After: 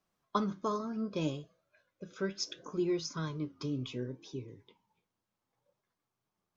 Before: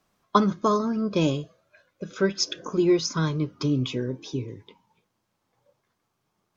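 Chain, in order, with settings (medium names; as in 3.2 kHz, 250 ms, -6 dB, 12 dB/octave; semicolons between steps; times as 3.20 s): flange 0.69 Hz, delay 4.8 ms, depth 7 ms, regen +75%; trim -7 dB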